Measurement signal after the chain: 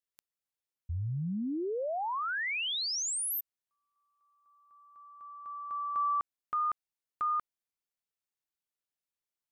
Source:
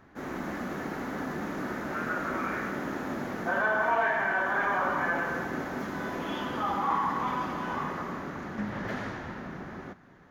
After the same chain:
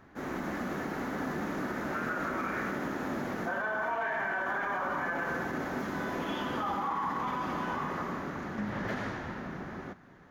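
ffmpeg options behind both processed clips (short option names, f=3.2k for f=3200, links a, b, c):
-af "alimiter=level_in=0.5dB:limit=-24dB:level=0:latency=1:release=52,volume=-0.5dB"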